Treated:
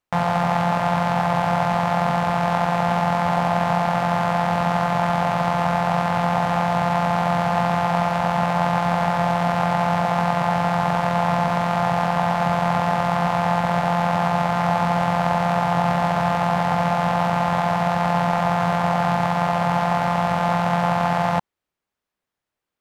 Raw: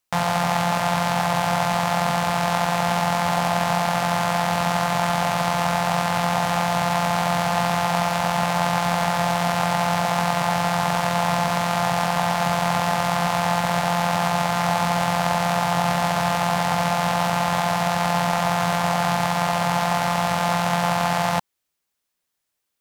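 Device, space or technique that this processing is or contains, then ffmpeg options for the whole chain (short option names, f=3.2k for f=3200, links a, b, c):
through cloth: -af "highshelf=f=3.3k:g=-16.5,volume=2.5dB"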